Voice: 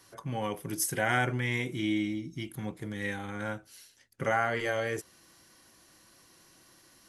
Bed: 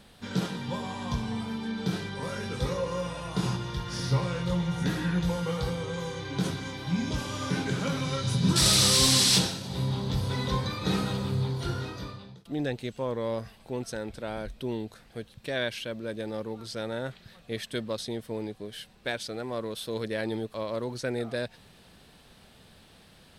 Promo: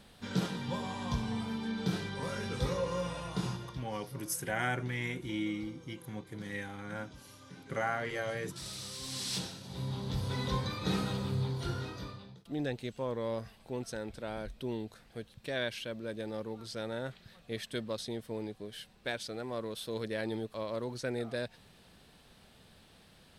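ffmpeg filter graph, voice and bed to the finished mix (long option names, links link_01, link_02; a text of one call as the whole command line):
ffmpeg -i stem1.wav -i stem2.wav -filter_complex "[0:a]adelay=3500,volume=-5.5dB[link_01];[1:a]volume=14.5dB,afade=type=out:start_time=3.16:duration=0.76:silence=0.112202,afade=type=in:start_time=9.02:duration=1.4:silence=0.133352[link_02];[link_01][link_02]amix=inputs=2:normalize=0" out.wav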